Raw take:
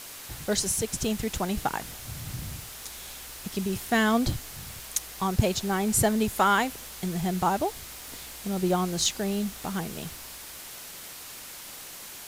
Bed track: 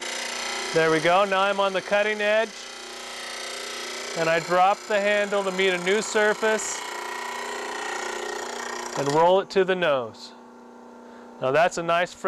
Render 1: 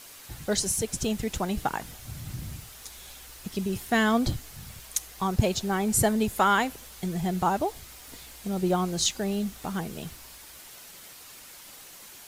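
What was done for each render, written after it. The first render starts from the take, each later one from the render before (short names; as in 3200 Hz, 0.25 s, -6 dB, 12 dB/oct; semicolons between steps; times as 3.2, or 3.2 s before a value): denoiser 6 dB, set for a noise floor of -43 dBFS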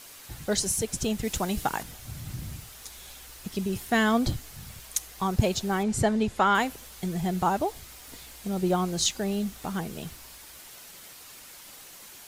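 1.24–1.83 high shelf 3700 Hz +6 dB; 5.83–6.55 air absorption 75 m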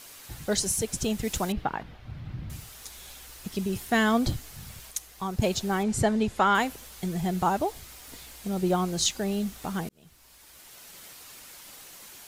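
1.52–2.5 air absorption 340 m; 4.91–5.42 gain -4.5 dB; 9.89–11 fade in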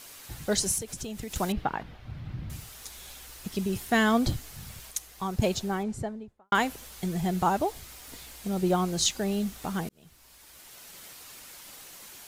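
0.78–1.36 compressor, threshold -33 dBFS; 5.34–6.52 studio fade out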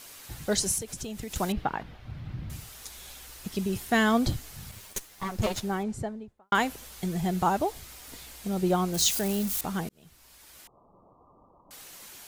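4.71–5.62 minimum comb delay 9.7 ms; 8.94–9.61 switching spikes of -25 dBFS; 10.67–11.71 Chebyshev low-pass 1200 Hz, order 8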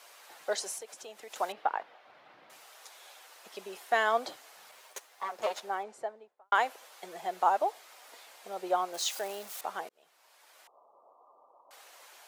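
HPF 590 Hz 24 dB/oct; tilt -3.5 dB/oct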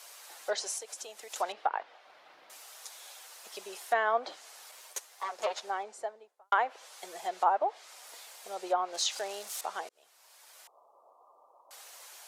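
treble ducked by the level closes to 1800 Hz, closed at -24 dBFS; tone controls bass -12 dB, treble +8 dB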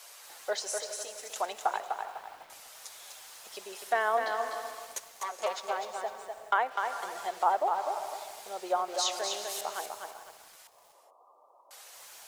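non-linear reverb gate 0.45 s rising, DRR 11 dB; lo-fi delay 0.25 s, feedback 35%, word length 9-bit, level -5 dB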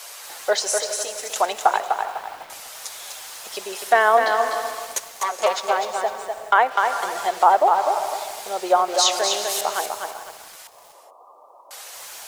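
gain +12 dB; limiter -3 dBFS, peak gain reduction 2.5 dB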